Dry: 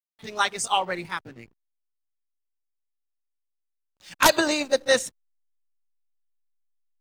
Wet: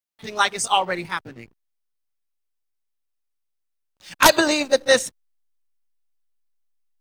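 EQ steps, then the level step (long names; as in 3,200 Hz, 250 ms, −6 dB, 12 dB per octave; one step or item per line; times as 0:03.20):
notch filter 7,200 Hz, Q 21
+4.0 dB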